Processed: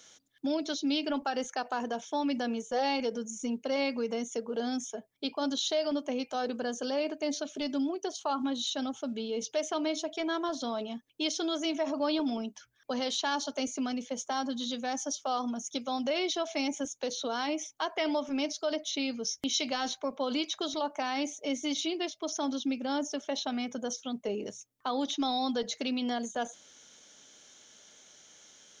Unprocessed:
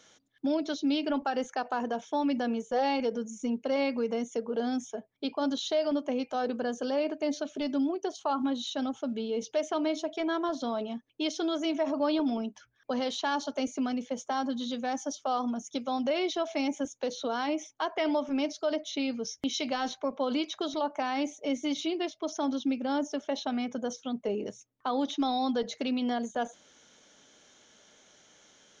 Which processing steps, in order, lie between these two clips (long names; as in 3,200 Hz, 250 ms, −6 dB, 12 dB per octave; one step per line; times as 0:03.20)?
high-shelf EQ 3,400 Hz +10.5 dB
level −2.5 dB